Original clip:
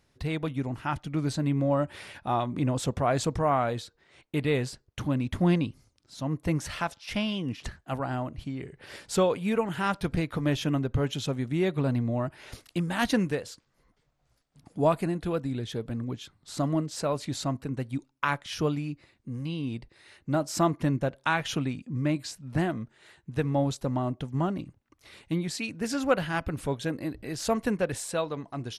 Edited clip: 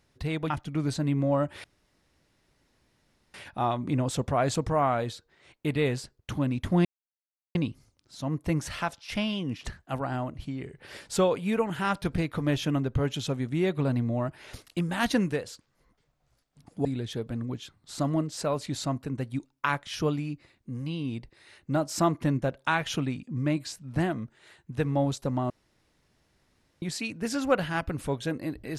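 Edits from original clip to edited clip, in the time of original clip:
0.50–0.89 s: delete
2.03 s: insert room tone 1.70 s
5.54 s: insert silence 0.70 s
14.84–15.44 s: delete
24.09–25.41 s: room tone

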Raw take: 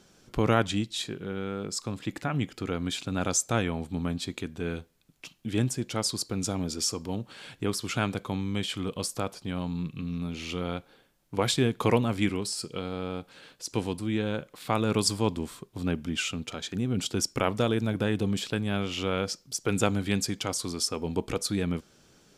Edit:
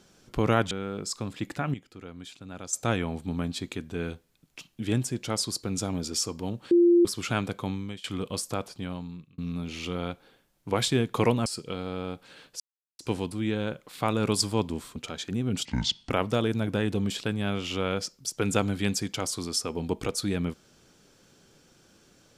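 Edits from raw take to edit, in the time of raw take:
0.71–1.37 s: delete
2.40–3.39 s: gain -12 dB
7.37–7.71 s: bleep 346 Hz -15 dBFS
8.36–8.70 s: fade out, to -22 dB
9.39–10.04 s: fade out
12.12–12.52 s: delete
13.66 s: insert silence 0.39 s
15.63–16.40 s: delete
17.09–17.37 s: speed 62%

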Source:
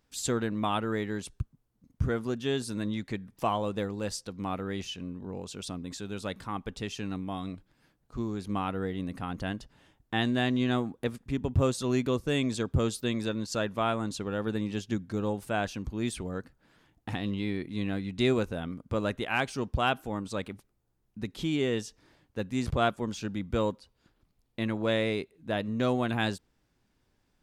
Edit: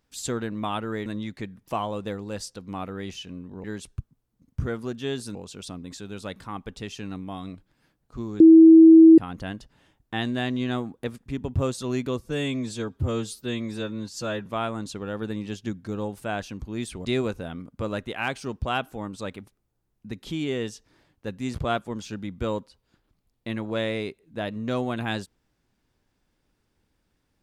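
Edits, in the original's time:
1.06–2.77 s: move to 5.35 s
8.40–9.18 s: bleep 324 Hz -7 dBFS
12.21–13.71 s: stretch 1.5×
16.30–18.17 s: delete

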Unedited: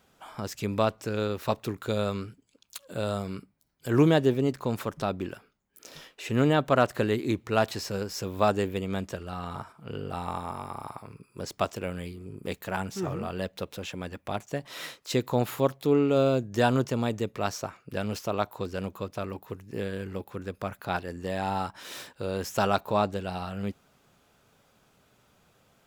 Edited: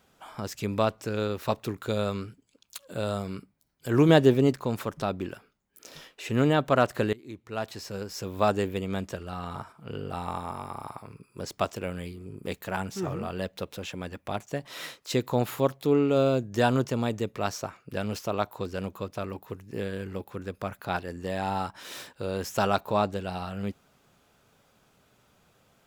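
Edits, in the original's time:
4.09–4.55 s: gain +4 dB
7.13–8.50 s: fade in, from -22.5 dB

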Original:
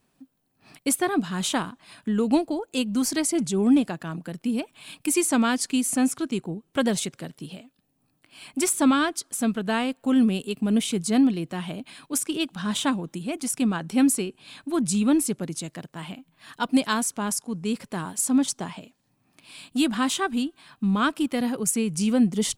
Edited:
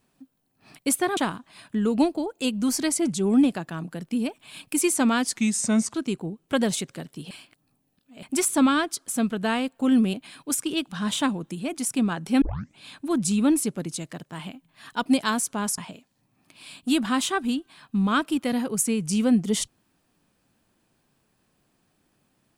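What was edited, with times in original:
1.17–1.50 s: delete
5.69–6.18 s: speed 85%
7.55–8.47 s: reverse
10.38–11.77 s: delete
14.05 s: tape start 0.37 s
17.41–18.66 s: delete

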